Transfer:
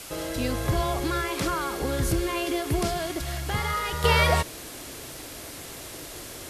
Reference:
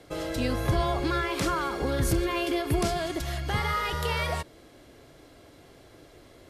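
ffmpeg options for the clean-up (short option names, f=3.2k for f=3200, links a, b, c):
-af "afwtdn=0.01,asetnsamples=n=441:p=0,asendcmd='4.04 volume volume -8.5dB',volume=0dB"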